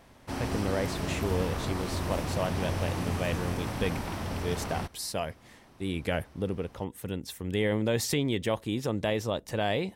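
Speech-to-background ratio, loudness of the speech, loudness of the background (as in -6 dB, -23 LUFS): 1.0 dB, -32.5 LUFS, -33.5 LUFS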